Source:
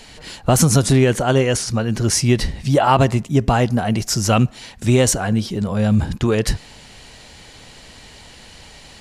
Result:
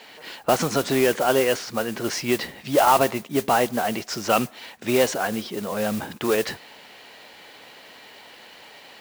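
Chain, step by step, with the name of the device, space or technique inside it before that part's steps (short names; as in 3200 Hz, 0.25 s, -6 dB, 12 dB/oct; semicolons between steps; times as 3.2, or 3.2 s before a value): carbon microphone (BPF 370–3400 Hz; soft clip -6.5 dBFS, distortion -20 dB; modulation noise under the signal 13 dB)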